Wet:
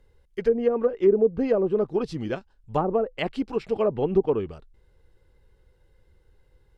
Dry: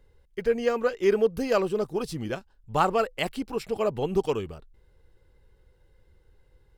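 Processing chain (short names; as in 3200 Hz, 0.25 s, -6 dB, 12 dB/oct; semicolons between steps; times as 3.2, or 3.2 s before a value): treble ducked by the level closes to 530 Hz, closed at -18.5 dBFS; dynamic EQ 310 Hz, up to +5 dB, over -34 dBFS, Q 0.76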